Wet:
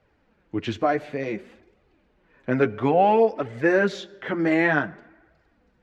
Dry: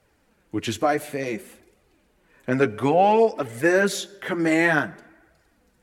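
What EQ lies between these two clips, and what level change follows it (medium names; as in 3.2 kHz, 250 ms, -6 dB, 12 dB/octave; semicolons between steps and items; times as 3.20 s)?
distance through air 200 m; 0.0 dB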